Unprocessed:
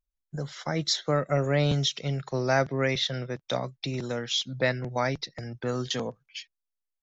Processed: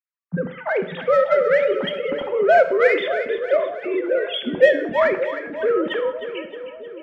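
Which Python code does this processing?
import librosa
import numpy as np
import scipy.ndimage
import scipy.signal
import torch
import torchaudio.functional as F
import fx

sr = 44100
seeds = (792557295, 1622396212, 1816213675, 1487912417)

p1 = fx.sine_speech(x, sr)
p2 = scipy.signal.sosfilt(scipy.signal.butter(4, 2400.0, 'lowpass', fs=sr, output='sos'), p1)
p3 = fx.notch(p2, sr, hz=1100.0, q=15.0)
p4 = 10.0 ** (-27.0 / 20.0) * np.tanh(p3 / 10.0 ** (-27.0 / 20.0))
p5 = p3 + F.gain(torch.from_numpy(p4), -7.5).numpy()
p6 = fx.echo_split(p5, sr, split_hz=750.0, low_ms=583, high_ms=311, feedback_pct=52, wet_db=-11)
p7 = fx.rev_gated(p6, sr, seeds[0], gate_ms=230, shape='falling', drr_db=8.0)
y = F.gain(torch.from_numpy(p7), 6.5).numpy()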